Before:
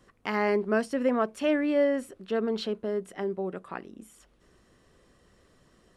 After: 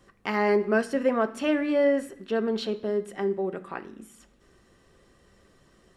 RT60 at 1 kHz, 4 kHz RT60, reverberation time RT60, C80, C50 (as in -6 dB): 0.70 s, 0.80 s, 0.65 s, 19.5 dB, 16.0 dB